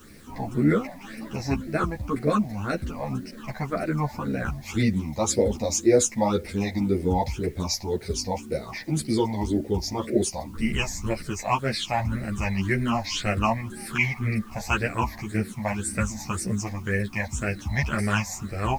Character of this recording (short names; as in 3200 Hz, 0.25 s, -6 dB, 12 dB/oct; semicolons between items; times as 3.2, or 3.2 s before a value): phasing stages 8, 1.9 Hz, lowest notch 380–1000 Hz; a quantiser's noise floor 10-bit, dither triangular; a shimmering, thickened sound